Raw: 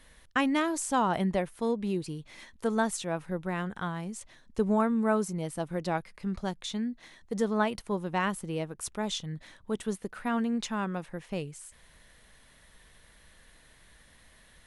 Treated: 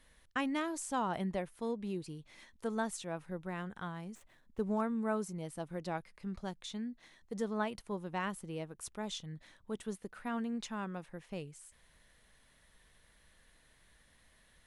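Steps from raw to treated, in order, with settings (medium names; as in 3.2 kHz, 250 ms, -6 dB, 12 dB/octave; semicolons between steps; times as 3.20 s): 4.15–4.81 s: median filter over 9 samples; trim -8 dB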